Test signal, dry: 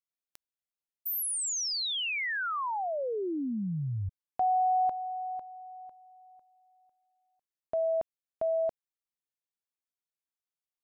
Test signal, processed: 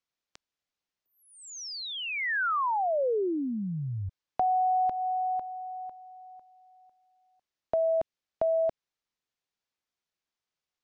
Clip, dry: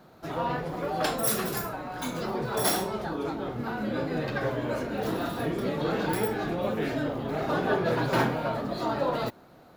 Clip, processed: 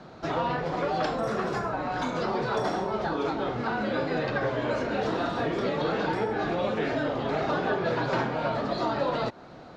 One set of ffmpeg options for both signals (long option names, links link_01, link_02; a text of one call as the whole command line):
ffmpeg -i in.wav -filter_complex "[0:a]acrossover=split=440|1700[link_01][link_02][link_03];[link_01]acompressor=threshold=-42dB:ratio=3[link_04];[link_02]acompressor=threshold=-35dB:ratio=6[link_05];[link_03]acompressor=threshold=-47dB:ratio=5[link_06];[link_04][link_05][link_06]amix=inputs=3:normalize=0,lowpass=frequency=6300:width=0.5412,lowpass=frequency=6300:width=1.3066,volume=7.5dB" out.wav